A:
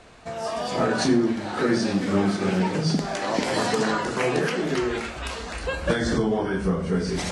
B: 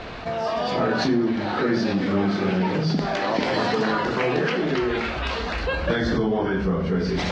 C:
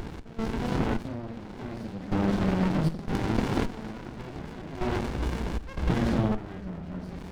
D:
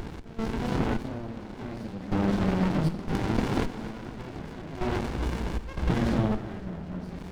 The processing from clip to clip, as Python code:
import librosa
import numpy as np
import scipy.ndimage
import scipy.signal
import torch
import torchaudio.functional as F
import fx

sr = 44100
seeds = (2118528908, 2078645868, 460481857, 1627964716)

y1 = scipy.signal.sosfilt(scipy.signal.butter(4, 4700.0, 'lowpass', fs=sr, output='sos'), x)
y1 = fx.env_flatten(y1, sr, amount_pct=50)
y1 = F.gain(torch.from_numpy(y1), -2.0).numpy()
y2 = fx.step_gate(y1, sr, bpm=78, pattern='x.xxx......xxx', floor_db=-12.0, edge_ms=4.5)
y2 = fx.running_max(y2, sr, window=65)
y3 = fx.echo_feedback(y2, sr, ms=241, feedback_pct=52, wet_db=-16.0)